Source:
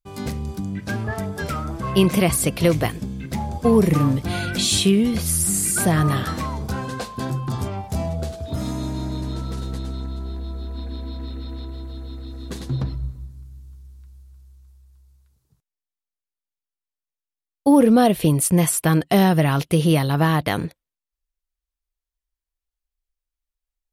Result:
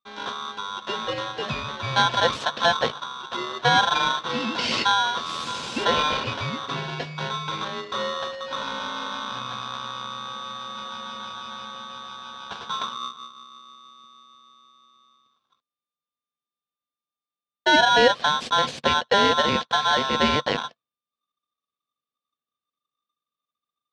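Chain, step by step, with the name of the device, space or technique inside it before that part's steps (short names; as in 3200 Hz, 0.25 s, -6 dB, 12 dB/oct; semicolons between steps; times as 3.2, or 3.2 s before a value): ring modulator pedal into a guitar cabinet (polarity switched at an audio rate 1200 Hz; speaker cabinet 76–4300 Hz, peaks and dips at 140 Hz +6 dB, 230 Hz +9 dB, 500 Hz +6 dB, 900 Hz -4 dB, 1300 Hz -9 dB, 2000 Hz -6 dB)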